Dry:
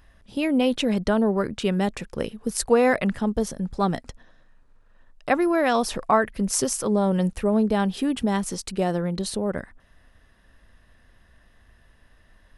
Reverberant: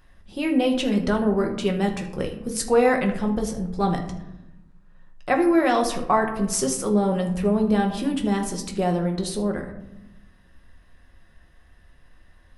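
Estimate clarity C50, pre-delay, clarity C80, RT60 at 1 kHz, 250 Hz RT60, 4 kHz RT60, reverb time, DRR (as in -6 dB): 9.0 dB, 3 ms, 11.5 dB, 0.80 s, 1.5 s, 0.40 s, 0.90 s, 2.0 dB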